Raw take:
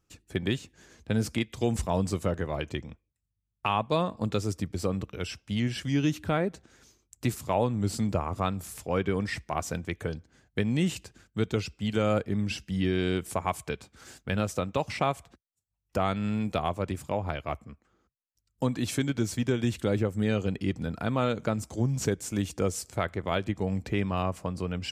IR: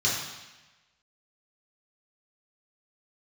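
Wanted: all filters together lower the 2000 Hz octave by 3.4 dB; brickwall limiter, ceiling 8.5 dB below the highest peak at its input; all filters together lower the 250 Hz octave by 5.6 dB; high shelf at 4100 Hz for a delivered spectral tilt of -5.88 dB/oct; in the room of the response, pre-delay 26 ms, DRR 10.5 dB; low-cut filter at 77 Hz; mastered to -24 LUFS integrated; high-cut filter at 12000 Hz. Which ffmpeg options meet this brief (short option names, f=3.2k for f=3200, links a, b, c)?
-filter_complex "[0:a]highpass=77,lowpass=12k,equalizer=f=250:t=o:g=-7.5,equalizer=f=2k:t=o:g=-3,highshelf=f=4.1k:g=-5.5,alimiter=limit=-23dB:level=0:latency=1,asplit=2[a][b];[1:a]atrim=start_sample=2205,adelay=26[c];[b][c]afir=irnorm=-1:irlink=0,volume=-22dB[d];[a][d]amix=inputs=2:normalize=0,volume=11dB"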